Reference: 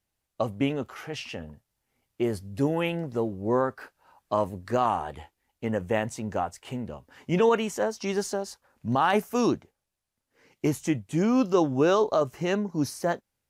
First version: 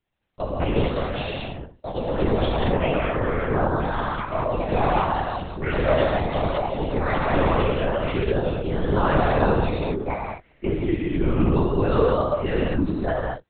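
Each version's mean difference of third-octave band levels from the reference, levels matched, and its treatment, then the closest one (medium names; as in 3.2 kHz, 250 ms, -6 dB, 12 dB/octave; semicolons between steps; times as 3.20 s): 13.5 dB: peak limiter -17 dBFS, peak gain reduction 5 dB; ever faster or slower copies 304 ms, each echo +5 st, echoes 2; gated-style reverb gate 260 ms flat, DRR -4 dB; LPC vocoder at 8 kHz whisper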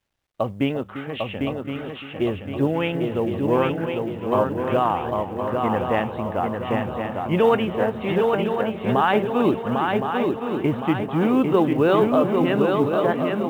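9.5 dB: on a send: shuffle delay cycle 1066 ms, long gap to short 3:1, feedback 46%, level -4 dB; on the sum: resampled via 8 kHz; echo whose repeats swap between lows and highs 346 ms, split 860 Hz, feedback 65%, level -11.5 dB; companded quantiser 8-bit; trim +3.5 dB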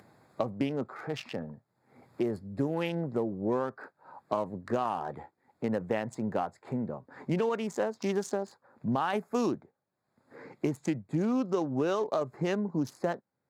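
4.0 dB: local Wiener filter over 15 samples; upward compressor, threshold -37 dBFS; high-pass 120 Hz 24 dB/octave; compression, threshold -28 dBFS, peak gain reduction 11 dB; trim +2 dB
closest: third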